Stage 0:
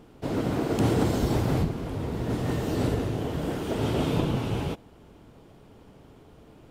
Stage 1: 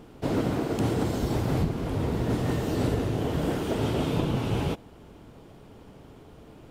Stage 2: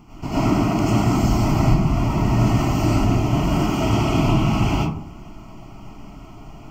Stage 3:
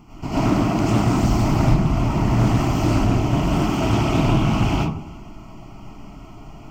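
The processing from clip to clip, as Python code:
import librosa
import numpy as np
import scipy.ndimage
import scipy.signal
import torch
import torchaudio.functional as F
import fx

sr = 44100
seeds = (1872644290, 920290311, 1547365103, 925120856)

y1 = fx.rider(x, sr, range_db=10, speed_s=0.5)
y2 = fx.fixed_phaser(y1, sr, hz=2500.0, stages=8)
y2 = fx.rev_freeverb(y2, sr, rt60_s=0.55, hf_ratio=0.4, predelay_ms=60, drr_db=-9.0)
y2 = y2 * librosa.db_to_amplitude(3.5)
y3 = y2 + 10.0 ** (-23.5 / 20.0) * np.pad(y2, (int(330 * sr / 1000.0), 0))[:len(y2)]
y3 = fx.doppler_dist(y3, sr, depth_ms=0.33)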